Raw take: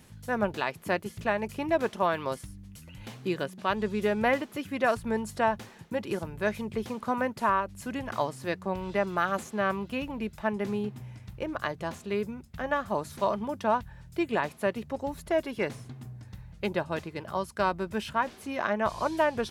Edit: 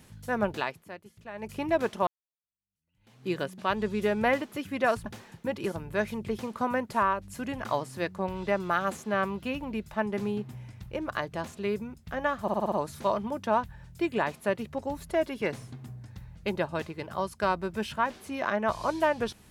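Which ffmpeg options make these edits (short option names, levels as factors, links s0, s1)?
-filter_complex "[0:a]asplit=10[s0][s1][s2][s3][s4][s5][s6][s7][s8][s9];[s0]atrim=end=0.86,asetpts=PTS-STARTPTS,afade=t=out:st=0.61:d=0.25:silence=0.177828[s10];[s1]atrim=start=0.86:end=1.32,asetpts=PTS-STARTPTS,volume=0.178[s11];[s2]atrim=start=1.32:end=2.07,asetpts=PTS-STARTPTS,afade=t=in:d=0.25:silence=0.177828,afade=t=out:st=0.746:d=0.004:c=hsin[s12];[s3]atrim=start=2.07:end=5.062,asetpts=PTS-STARTPTS,afade=t=in:d=1.24:c=exp[s13];[s4]atrim=start=5.528:end=12.952[s14];[s5]atrim=start=12.888:end=12.952[s15];[s6]atrim=start=12.888:end=12.952[s16];[s7]atrim=start=12.888:end=12.952[s17];[s8]atrim=start=12.888:end=12.952[s18];[s9]atrim=start=12.888[s19];[s10][s11][s12][s13]concat=n=4:v=0:a=1[s20];[s20][s14]acrossfade=d=0.004:c1=hsin:c2=hsin[s21];[s21][s15]acrossfade=d=0.004:c1=hsin:c2=hsin[s22];[s22][s16]acrossfade=d=0.004:c1=hsin:c2=hsin[s23];[s23][s17]acrossfade=d=0.004:c1=hsin:c2=hsin[s24];[s24][s18]acrossfade=d=0.004:c1=hsin:c2=hsin[s25];[s25][s19]acrossfade=d=0.004:c1=hsin:c2=hsin"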